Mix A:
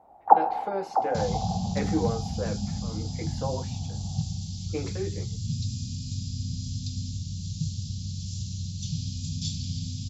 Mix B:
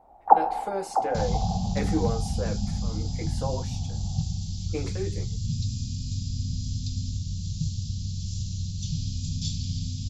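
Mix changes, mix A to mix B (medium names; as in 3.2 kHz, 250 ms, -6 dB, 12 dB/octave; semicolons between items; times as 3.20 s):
speech: remove boxcar filter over 5 samples; master: remove high-pass 85 Hz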